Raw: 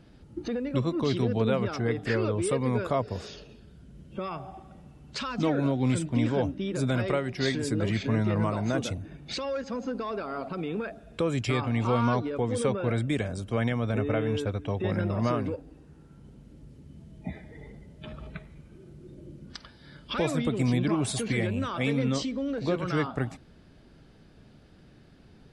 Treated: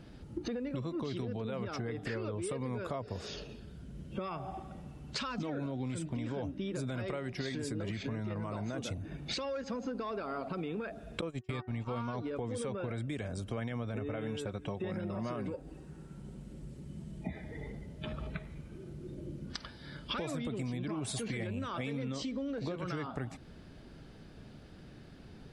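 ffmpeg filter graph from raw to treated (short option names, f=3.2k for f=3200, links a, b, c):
-filter_complex "[0:a]asettb=1/sr,asplit=3[a][b][c];[a]atrim=end=11.214[d];[b]atrim=start=11.21:end=11.89,asetpts=PTS-STARTPTS,afade=t=in:d=0.004:c=qsin,afade=t=out:st=0.676:d=0.004:c=qsin,agate=range=-39dB:threshold=-27dB:ratio=16:release=100:detection=peak,bandreject=f=372.1:t=h:w=4,bandreject=f=744.2:t=h:w=4,bandreject=f=1.1163k:t=h:w=4,bandreject=f=1.4884k:t=h:w=4,bandreject=f=1.8605k:t=h:w=4,asubboost=boost=4:cutoff=230[e];[c]atrim=start=11.886[f];[d][e]acrossfade=d=0.004:c1=hsin:c2=qsin[g];[g][f]acrossfade=d=0.004:c1=qsin:c2=hsin,asettb=1/sr,asplit=3[h][i][j];[h]atrim=end=14.164[k];[i]atrim=start=14.16:end=17.24,asetpts=PTS-STARTPTS,afade=t=in:d=0.004:c=qsin,afade=t=out:st=3.076:d=0.004:c=qsin,equalizer=f=8.1k:w=3.5:g=6.5,aecho=1:1:5.4:0.4,atrim=end_sample=135828[l];[j]atrim=start=17.236[m];[k][l]acrossfade=d=0.004:c1=hsin:c2=qsin[n];[n][m]acrossfade=d=0.004:c1=qsin:c2=hsin,alimiter=limit=-20.5dB:level=0:latency=1:release=37,acompressor=threshold=-37dB:ratio=6,volume=2.5dB"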